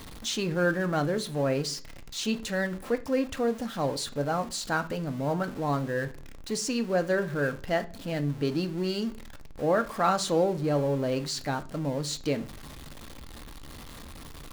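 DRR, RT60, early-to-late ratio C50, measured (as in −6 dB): 8.5 dB, 0.45 s, 17.5 dB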